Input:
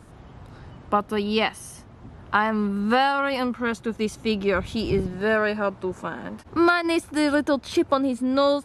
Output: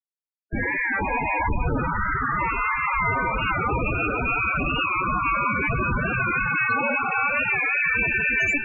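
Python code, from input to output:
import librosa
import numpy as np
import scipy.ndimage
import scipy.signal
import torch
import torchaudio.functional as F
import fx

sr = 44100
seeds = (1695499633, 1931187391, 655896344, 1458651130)

y = fx.spec_swells(x, sr, rise_s=2.91)
y = fx.highpass(y, sr, hz=340.0, slope=6)
y = fx.noise_reduce_blind(y, sr, reduce_db=22)
y = fx.peak_eq(y, sr, hz=1900.0, db=8.0, octaves=0.36)
y = fx.freq_invert(y, sr, carrier_hz=2900)
y = fx.schmitt(y, sr, flips_db=-26.0)
y = fx.air_absorb(y, sr, metres=53.0)
y = y + 10.0 ** (-5.0 / 20.0) * np.pad(y, (int(483 * sr / 1000.0), 0))[:len(y)]
y = fx.spec_topn(y, sr, count=16)
y = fx.record_warp(y, sr, rpm=45.0, depth_cents=100.0)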